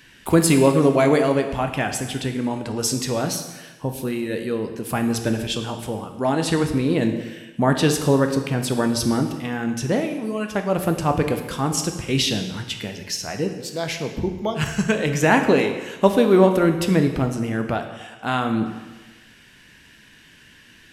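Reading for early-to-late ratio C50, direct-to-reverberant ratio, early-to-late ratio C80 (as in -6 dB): 8.0 dB, 5.5 dB, 9.5 dB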